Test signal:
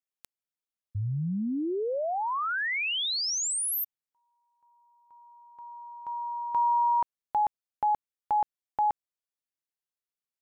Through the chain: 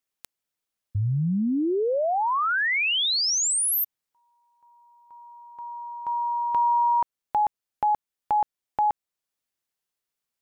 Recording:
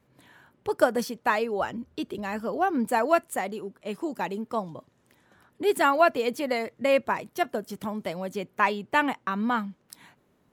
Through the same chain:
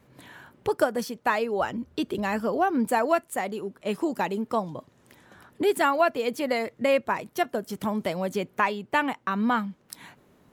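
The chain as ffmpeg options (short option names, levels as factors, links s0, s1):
-af "acompressor=threshold=0.0316:ratio=2:attack=3.2:release=829:knee=1:detection=rms,volume=2.37"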